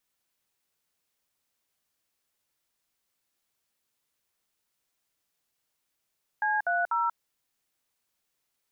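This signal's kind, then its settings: DTMF "C30", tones 0.186 s, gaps 60 ms, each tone -26.5 dBFS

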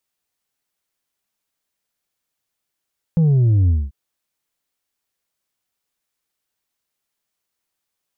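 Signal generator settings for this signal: sub drop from 170 Hz, over 0.74 s, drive 3.5 dB, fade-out 0.22 s, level -12 dB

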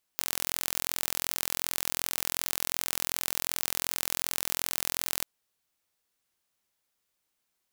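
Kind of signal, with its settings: pulse train 42.7/s, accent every 0, -2.5 dBFS 5.05 s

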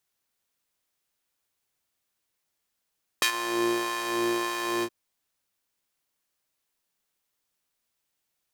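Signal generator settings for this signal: synth patch with filter wobble A#2, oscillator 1 saw, oscillator 2 square, interval +19 st, oscillator 2 level -1 dB, filter highpass, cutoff 320 Hz, Q 0.91, filter envelope 3 oct, filter decay 0.12 s, filter sustain 25%, attack 2.4 ms, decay 0.09 s, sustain -15 dB, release 0.06 s, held 1.61 s, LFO 1.7 Hz, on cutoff 0.6 oct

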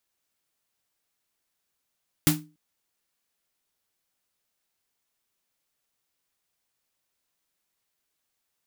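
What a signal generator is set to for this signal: snare drum length 0.29 s, tones 160 Hz, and 300 Hz, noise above 640 Hz, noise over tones -0.5 dB, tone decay 0.33 s, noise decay 0.21 s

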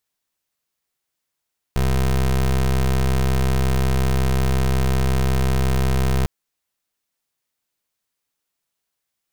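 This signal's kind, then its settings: pulse 65.5 Hz, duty 23% -18 dBFS 4.50 s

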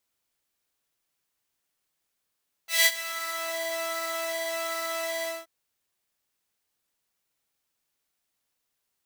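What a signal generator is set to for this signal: synth patch with pulse-width modulation E5, interval +19 st, oscillator 2 level -3 dB, sub -6 dB, noise -5 dB, filter highpass, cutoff 440 Hz, Q 1, filter envelope 2.5 oct, filter decay 0.93 s, filter sustain 30%, attack 0.17 s, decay 0.06 s, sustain -17 dB, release 0.21 s, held 2.57 s, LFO 1.3 Hz, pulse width 36%, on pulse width 15%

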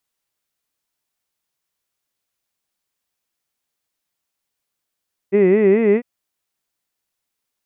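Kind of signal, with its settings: formant-synthesis vowel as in hid, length 0.70 s, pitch 189 Hz, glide +3 st, vibrato 4.7 Hz, vibrato depth 1.5 st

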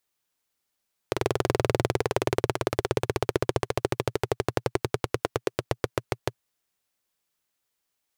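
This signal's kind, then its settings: single-cylinder engine model, changing speed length 5.30 s, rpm 2600, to 700, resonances 120/390 Hz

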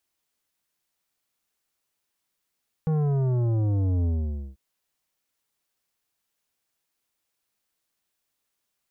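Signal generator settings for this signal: sub drop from 160 Hz, over 1.69 s, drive 11 dB, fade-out 0.51 s, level -22 dB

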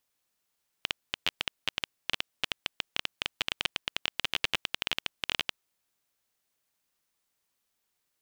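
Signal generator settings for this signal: random clicks 14/s -9.5 dBFS 4.77 s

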